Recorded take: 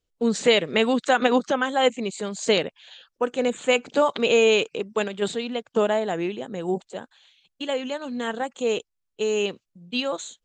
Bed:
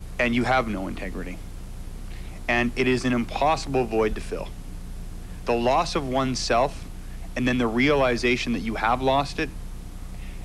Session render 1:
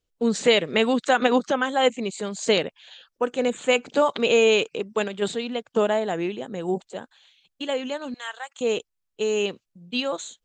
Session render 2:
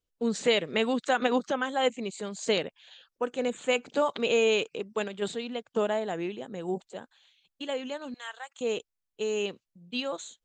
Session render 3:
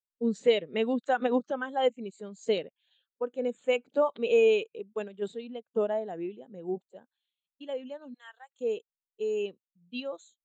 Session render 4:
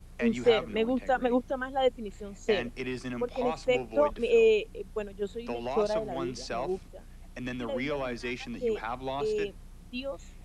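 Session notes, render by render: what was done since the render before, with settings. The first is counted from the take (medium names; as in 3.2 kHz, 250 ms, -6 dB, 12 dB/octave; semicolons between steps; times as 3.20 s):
8.14–8.61 s: Bessel high-pass 1.2 kHz, order 4
trim -6 dB
spectral contrast expander 1.5:1
add bed -13 dB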